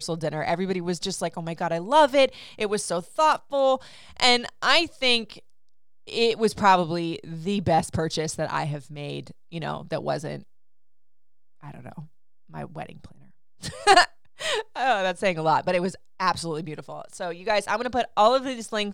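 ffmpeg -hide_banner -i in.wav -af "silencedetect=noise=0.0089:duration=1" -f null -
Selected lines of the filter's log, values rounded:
silence_start: 10.43
silence_end: 11.63 | silence_duration: 1.20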